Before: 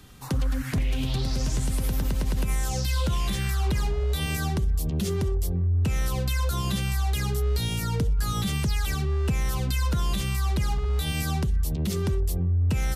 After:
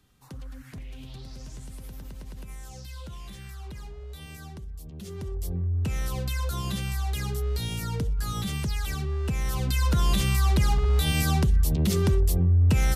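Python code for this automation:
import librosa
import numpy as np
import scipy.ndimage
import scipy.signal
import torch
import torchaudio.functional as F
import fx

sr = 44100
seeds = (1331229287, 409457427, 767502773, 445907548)

y = fx.gain(x, sr, db=fx.line((4.94, -15.0), (5.53, -3.5), (9.26, -3.5), (10.1, 3.5)))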